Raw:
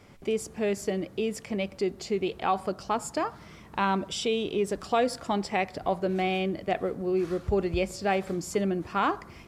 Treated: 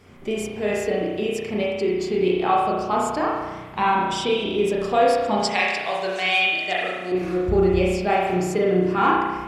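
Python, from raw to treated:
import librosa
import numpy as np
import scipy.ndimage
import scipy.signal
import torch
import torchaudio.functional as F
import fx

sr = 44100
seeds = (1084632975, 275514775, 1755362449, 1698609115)

y = fx.spec_quant(x, sr, step_db=15)
y = fx.weighting(y, sr, curve='ITU-R 468', at=(5.39, 7.12))
y = fx.rev_spring(y, sr, rt60_s=1.2, pass_ms=(33,), chirp_ms=65, drr_db=-4.0)
y = y * librosa.db_to_amplitude(2.5)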